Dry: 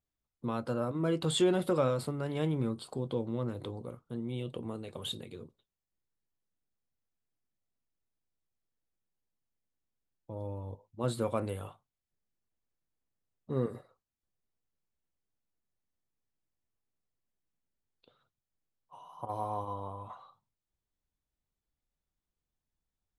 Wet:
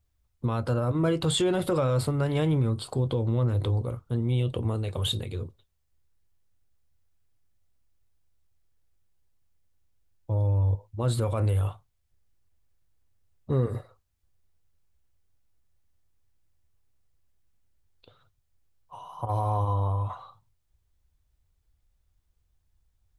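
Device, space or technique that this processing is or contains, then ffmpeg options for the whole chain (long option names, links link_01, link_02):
car stereo with a boomy subwoofer: -af "lowshelf=frequency=130:width_type=q:width=1.5:gain=11,alimiter=level_in=2dB:limit=-24dB:level=0:latency=1:release=75,volume=-2dB,volume=8.5dB"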